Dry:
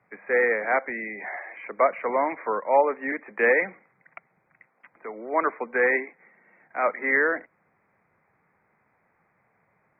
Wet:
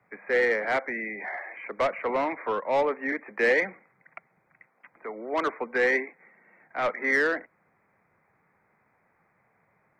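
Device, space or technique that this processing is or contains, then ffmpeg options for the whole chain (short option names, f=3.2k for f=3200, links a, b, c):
one-band saturation: -filter_complex "[0:a]acrossover=split=460|2000[a][b][c];[b]asoftclip=type=tanh:threshold=-24.5dB[d];[a][d][c]amix=inputs=3:normalize=0"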